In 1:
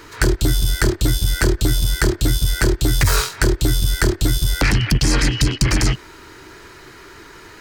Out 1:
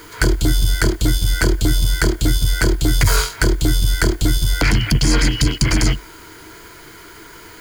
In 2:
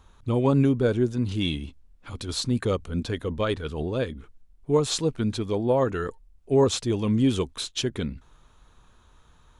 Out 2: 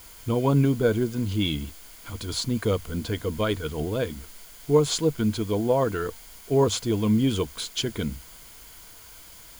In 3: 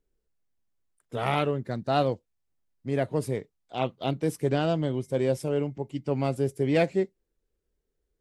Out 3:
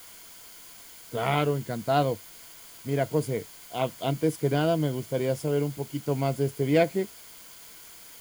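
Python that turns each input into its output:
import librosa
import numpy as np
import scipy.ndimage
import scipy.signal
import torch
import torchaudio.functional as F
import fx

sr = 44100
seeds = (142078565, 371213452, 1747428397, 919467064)

y = fx.quant_dither(x, sr, seeds[0], bits=8, dither='triangular')
y = fx.ripple_eq(y, sr, per_octave=1.8, db=6)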